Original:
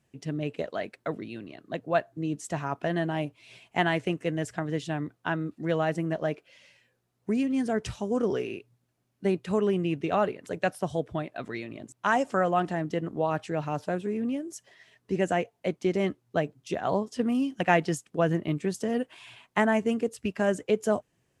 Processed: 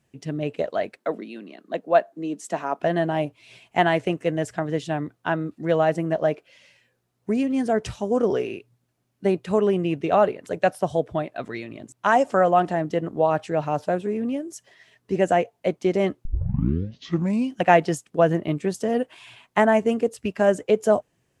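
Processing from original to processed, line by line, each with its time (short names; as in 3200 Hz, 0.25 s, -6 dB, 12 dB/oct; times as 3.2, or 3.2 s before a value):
0.97–2.8 Chebyshev high-pass 190 Hz, order 4
16.25 tape start 1.28 s
whole clip: dynamic EQ 640 Hz, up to +6 dB, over -38 dBFS, Q 1.1; gain +2.5 dB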